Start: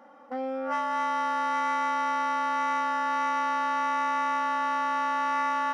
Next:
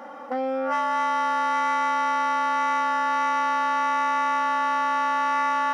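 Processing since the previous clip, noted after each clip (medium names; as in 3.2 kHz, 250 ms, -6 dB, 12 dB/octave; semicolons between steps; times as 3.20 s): in parallel at -2 dB: compressor with a negative ratio -38 dBFS, ratio -1; on the sum: bass shelf 160 Hz -9 dB; trim +2.5 dB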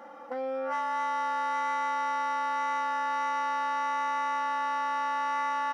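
comb 5.9 ms, depth 39%; trim -7.5 dB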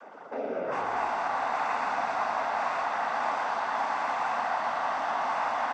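noise-vocoded speech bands 16; frequency-shifting echo 115 ms, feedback 62%, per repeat -44 Hz, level -7 dB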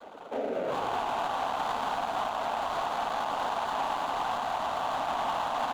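median filter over 25 samples; peak limiter -25.5 dBFS, peak gain reduction 5 dB; trim +2.5 dB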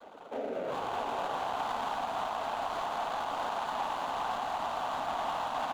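delay 618 ms -7 dB; trim -4 dB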